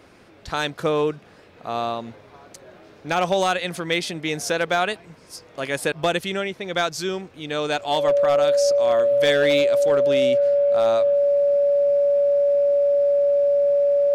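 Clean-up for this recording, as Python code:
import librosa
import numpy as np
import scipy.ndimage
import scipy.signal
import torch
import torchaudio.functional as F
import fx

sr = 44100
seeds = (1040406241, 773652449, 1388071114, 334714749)

y = fx.fix_declip(x, sr, threshold_db=-12.0)
y = fx.notch(y, sr, hz=570.0, q=30.0)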